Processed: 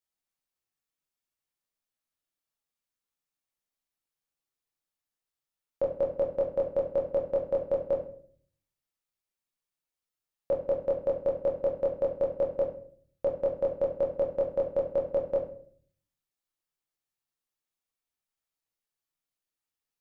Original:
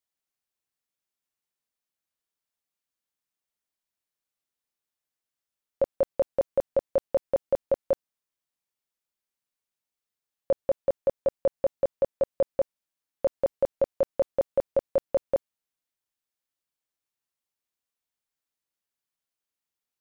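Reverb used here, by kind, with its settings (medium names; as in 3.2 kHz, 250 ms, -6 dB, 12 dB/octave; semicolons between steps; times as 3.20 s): simulated room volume 59 m³, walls mixed, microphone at 0.64 m; trim -4.5 dB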